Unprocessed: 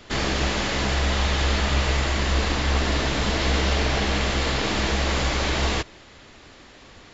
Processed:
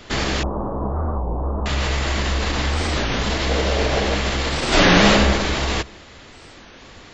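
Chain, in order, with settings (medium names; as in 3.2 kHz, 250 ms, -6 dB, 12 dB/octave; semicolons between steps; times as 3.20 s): peak limiter -17 dBFS, peak gain reduction 6.5 dB; 0.43–1.66 s: elliptic low-pass 1.1 kHz, stop band 50 dB; 3.49–4.15 s: peaking EQ 520 Hz +8 dB 0.77 oct; 4.70–5.10 s: reverb throw, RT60 1.3 s, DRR -10.5 dB; warped record 33 1/3 rpm, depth 250 cents; trim +4.5 dB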